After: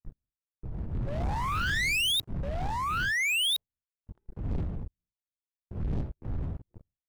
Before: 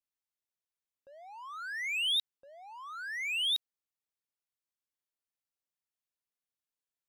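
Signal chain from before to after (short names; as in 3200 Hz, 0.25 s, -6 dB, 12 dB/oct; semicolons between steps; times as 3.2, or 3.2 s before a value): wind noise 100 Hz -46 dBFS; spectral noise reduction 16 dB; sample leveller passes 5; in parallel at -1 dB: compressor, threshold -38 dBFS, peak gain reduction 12.5 dB; on the sum: expander -53 dBFS; gain -4 dB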